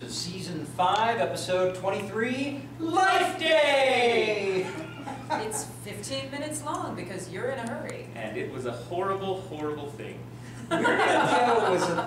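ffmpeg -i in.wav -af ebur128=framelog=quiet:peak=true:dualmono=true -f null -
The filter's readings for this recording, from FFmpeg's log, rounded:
Integrated loudness:
  I:         -23.9 LUFS
  Threshold: -34.3 LUFS
Loudness range:
  LRA:         8.8 LU
  Threshold: -44.7 LUFS
  LRA low:   -30.5 LUFS
  LRA high:  -21.6 LUFS
True peak:
  Peak:      -11.7 dBFS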